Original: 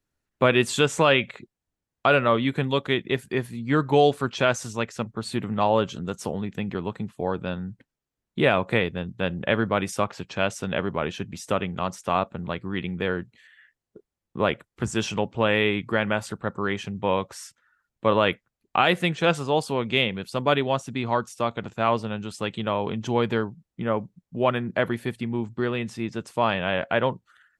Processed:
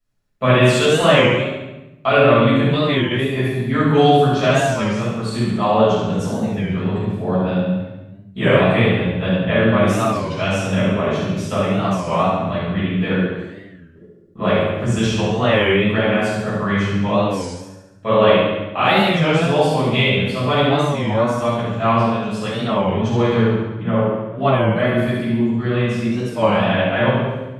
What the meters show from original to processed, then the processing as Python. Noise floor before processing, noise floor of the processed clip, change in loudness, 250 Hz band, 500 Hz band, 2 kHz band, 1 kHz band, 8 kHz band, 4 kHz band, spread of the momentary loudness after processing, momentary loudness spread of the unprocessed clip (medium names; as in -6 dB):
under -85 dBFS, -42 dBFS, +7.5 dB, +9.5 dB, +7.5 dB, +5.5 dB, +6.5 dB, +3.5 dB, +6.5 dB, 8 LU, 10 LU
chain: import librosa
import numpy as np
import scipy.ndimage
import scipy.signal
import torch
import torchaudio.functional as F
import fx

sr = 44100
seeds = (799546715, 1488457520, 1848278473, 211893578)

p1 = x + fx.echo_feedback(x, sr, ms=70, feedback_pct=58, wet_db=-6.5, dry=0)
p2 = fx.room_shoebox(p1, sr, seeds[0], volume_m3=400.0, walls='mixed', distance_m=6.5)
p3 = fx.record_warp(p2, sr, rpm=33.33, depth_cents=160.0)
y = p3 * librosa.db_to_amplitude(-9.0)